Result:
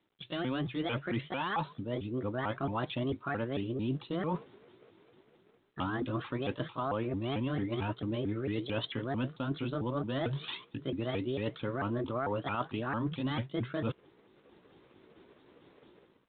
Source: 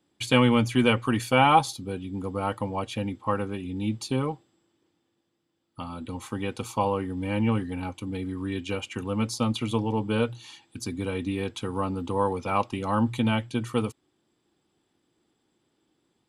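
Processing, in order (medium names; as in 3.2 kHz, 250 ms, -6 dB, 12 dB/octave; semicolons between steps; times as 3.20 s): sawtooth pitch modulation +6.5 st, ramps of 223 ms; level rider gain up to 15 dB; peak limiter -9 dBFS, peak gain reduction 7.5 dB; reverse; compression 6:1, threshold -32 dBFS, peak gain reduction 17.5 dB; reverse; G.726 40 kbps 8 kHz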